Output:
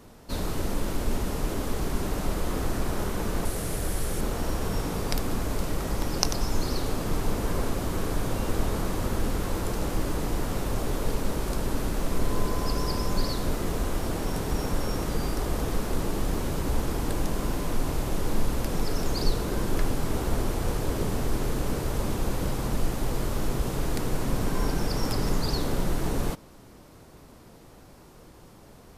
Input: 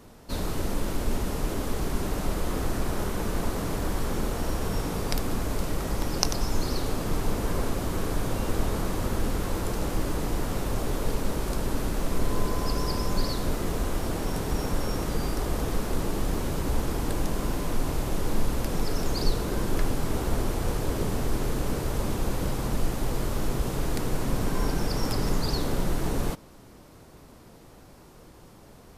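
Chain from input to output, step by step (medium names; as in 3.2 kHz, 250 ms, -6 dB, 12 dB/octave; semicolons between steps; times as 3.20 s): 3.45–4.21 s: fifteen-band graphic EQ 250 Hz -6 dB, 1 kHz -6 dB, 10 kHz +9 dB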